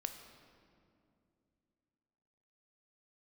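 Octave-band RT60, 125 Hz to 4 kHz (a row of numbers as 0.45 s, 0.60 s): 3.2 s, 3.3 s, 2.9 s, 2.3 s, 1.9 s, 1.5 s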